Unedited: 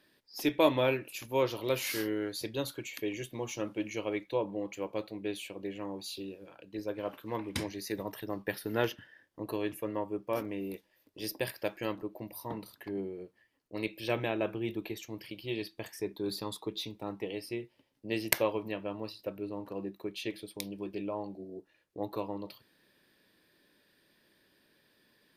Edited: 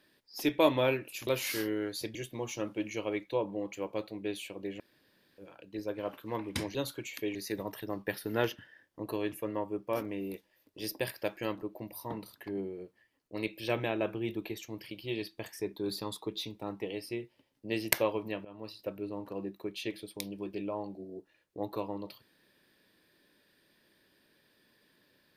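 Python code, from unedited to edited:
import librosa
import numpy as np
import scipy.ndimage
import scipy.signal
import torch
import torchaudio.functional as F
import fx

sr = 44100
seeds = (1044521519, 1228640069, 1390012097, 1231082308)

y = fx.edit(x, sr, fx.cut(start_s=1.27, length_s=0.4),
    fx.move(start_s=2.55, length_s=0.6, to_s=7.75),
    fx.room_tone_fill(start_s=5.8, length_s=0.58),
    fx.fade_in_from(start_s=18.85, length_s=0.34, floor_db=-18.0), tone=tone)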